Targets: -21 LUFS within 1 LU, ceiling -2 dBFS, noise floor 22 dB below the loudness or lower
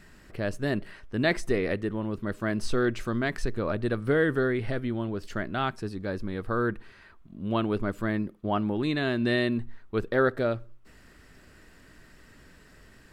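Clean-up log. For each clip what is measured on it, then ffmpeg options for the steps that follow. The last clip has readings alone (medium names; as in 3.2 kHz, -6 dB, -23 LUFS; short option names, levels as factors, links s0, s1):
loudness -29.0 LUFS; peak level -11.0 dBFS; loudness target -21.0 LUFS
-> -af "volume=2.51"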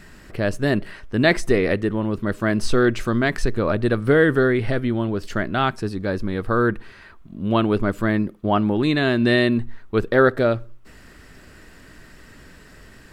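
loudness -21.0 LUFS; peak level -3.0 dBFS; noise floor -46 dBFS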